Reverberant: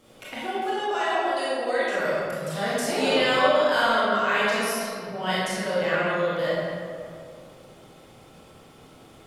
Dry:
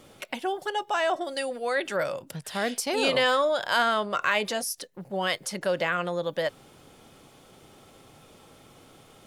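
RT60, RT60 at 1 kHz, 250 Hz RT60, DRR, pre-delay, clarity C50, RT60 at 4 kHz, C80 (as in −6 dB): 2.3 s, 2.2 s, 2.6 s, −9.5 dB, 21 ms, −4.0 dB, 1.2 s, −2.0 dB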